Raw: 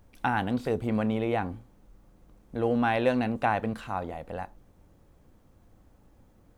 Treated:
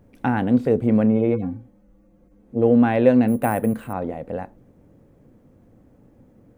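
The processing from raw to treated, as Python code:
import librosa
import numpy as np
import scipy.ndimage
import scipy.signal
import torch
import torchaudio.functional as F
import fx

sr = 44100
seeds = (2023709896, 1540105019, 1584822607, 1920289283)

y = fx.hpss_only(x, sr, part='harmonic', at=(1.08, 2.61), fade=0.02)
y = fx.graphic_eq(y, sr, hz=(125, 250, 500, 2000, 4000), db=(10, 11, 10, 5, -3))
y = fx.resample_bad(y, sr, factor=4, down='filtered', up='hold', at=(3.28, 3.93))
y = F.gain(torch.from_numpy(y), -3.0).numpy()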